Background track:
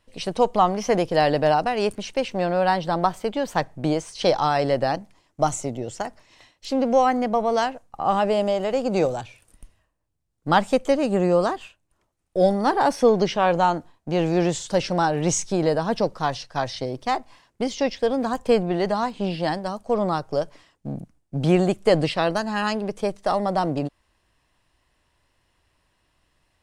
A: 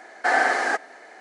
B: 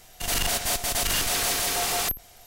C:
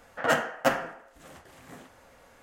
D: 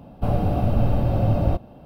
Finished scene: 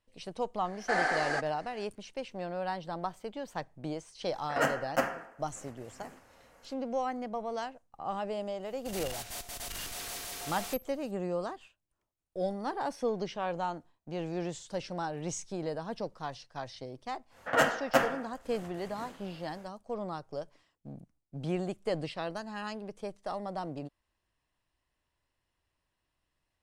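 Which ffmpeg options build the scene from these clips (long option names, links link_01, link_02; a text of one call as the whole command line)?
ffmpeg -i bed.wav -i cue0.wav -i cue1.wav -i cue2.wav -filter_complex "[3:a]asplit=2[link_01][link_02];[0:a]volume=-14.5dB[link_03];[1:a]equalizer=frequency=4600:width_type=o:width=0.21:gain=7[link_04];[link_01]equalizer=frequency=3600:width=4.1:gain=-9.5[link_05];[link_04]atrim=end=1.2,asetpts=PTS-STARTPTS,volume=-9.5dB,afade=type=in:duration=0.004:curve=hsin,afade=type=out:start_time=1.196:duration=0.004:curve=hsin,adelay=640[link_06];[link_05]atrim=end=2.42,asetpts=PTS-STARTPTS,volume=-4.5dB,afade=type=in:duration=0.004:curve=hsin,afade=type=out:start_time=2.416:duration=0.004:curve=hsin,adelay=4320[link_07];[2:a]atrim=end=2.46,asetpts=PTS-STARTPTS,volume=-15dB,afade=type=in:duration=0.004:curve=hsin,afade=type=out:start_time=2.456:duration=0.004:curve=hsin,adelay=8650[link_08];[link_02]atrim=end=2.42,asetpts=PTS-STARTPTS,volume=-1dB,afade=type=in:duration=0.1,afade=type=out:start_time=2.32:duration=0.1,adelay=17290[link_09];[link_03][link_06][link_07][link_08][link_09]amix=inputs=5:normalize=0" out.wav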